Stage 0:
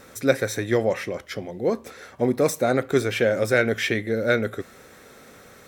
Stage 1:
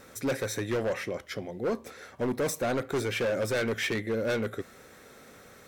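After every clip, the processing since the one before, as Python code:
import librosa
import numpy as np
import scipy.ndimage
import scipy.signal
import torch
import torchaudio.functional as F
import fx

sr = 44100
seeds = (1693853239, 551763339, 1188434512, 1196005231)

y = np.clip(10.0 ** (20.5 / 20.0) * x, -1.0, 1.0) / 10.0 ** (20.5 / 20.0)
y = F.gain(torch.from_numpy(y), -4.0).numpy()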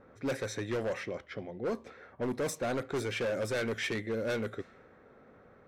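y = fx.env_lowpass(x, sr, base_hz=1100.0, full_db=-25.0)
y = F.gain(torch.from_numpy(y), -4.0).numpy()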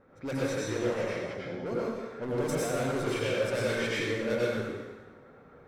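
y = fx.rev_plate(x, sr, seeds[0], rt60_s=1.2, hf_ratio=0.9, predelay_ms=80, drr_db=-6.0)
y = F.gain(torch.from_numpy(y), -3.5).numpy()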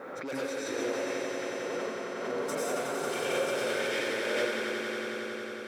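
y = scipy.signal.sosfilt(scipy.signal.butter(2, 360.0, 'highpass', fs=sr, output='sos'), x)
y = fx.echo_swell(y, sr, ms=91, loudest=5, wet_db=-8.0)
y = fx.pre_swell(y, sr, db_per_s=28.0)
y = F.gain(torch.from_numpy(y), -2.5).numpy()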